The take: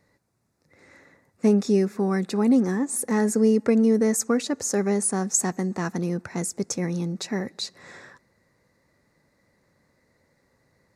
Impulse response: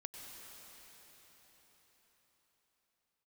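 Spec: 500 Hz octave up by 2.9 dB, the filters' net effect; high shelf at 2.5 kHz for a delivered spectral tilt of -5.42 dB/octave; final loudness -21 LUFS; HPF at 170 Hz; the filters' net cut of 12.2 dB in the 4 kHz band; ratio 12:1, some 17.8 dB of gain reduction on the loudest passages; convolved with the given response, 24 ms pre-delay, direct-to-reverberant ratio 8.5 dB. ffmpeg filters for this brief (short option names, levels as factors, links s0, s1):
-filter_complex "[0:a]highpass=170,equalizer=f=500:t=o:g=4,highshelf=f=2500:g=-8,equalizer=f=4000:t=o:g=-7.5,acompressor=threshold=0.0251:ratio=12,asplit=2[s0][s1];[1:a]atrim=start_sample=2205,adelay=24[s2];[s1][s2]afir=irnorm=-1:irlink=0,volume=0.531[s3];[s0][s3]amix=inputs=2:normalize=0,volume=6.31"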